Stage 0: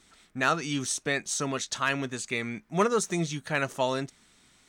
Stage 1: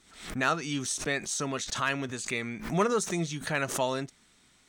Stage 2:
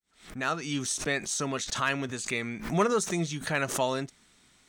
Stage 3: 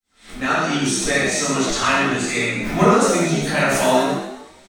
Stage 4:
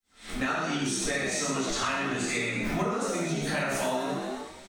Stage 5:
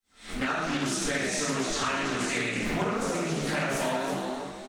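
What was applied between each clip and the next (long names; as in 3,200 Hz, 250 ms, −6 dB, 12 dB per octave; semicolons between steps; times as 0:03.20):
background raised ahead of every attack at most 92 dB per second; level −2 dB
fade in at the beginning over 0.76 s; level +1 dB
echo with shifted repeats 125 ms, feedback 40%, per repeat +59 Hz, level −7 dB; convolution reverb, pre-delay 4 ms, DRR −10.5 dB
downward compressor 10 to 1, threshold −26 dBFS, peak gain reduction 17 dB
on a send: single-tap delay 328 ms −8.5 dB; on the sum: highs frequency-modulated by the lows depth 0.35 ms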